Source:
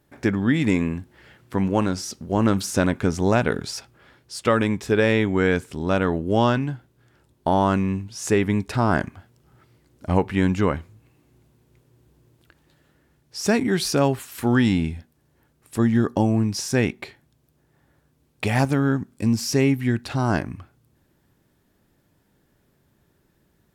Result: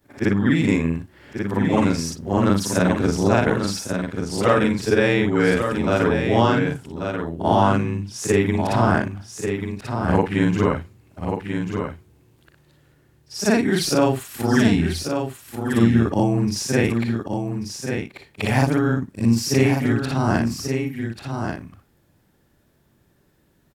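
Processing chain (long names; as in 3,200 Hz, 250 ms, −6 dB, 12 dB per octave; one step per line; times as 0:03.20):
every overlapping window played backwards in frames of 121 ms
single-tap delay 1,138 ms −6.5 dB
level +5 dB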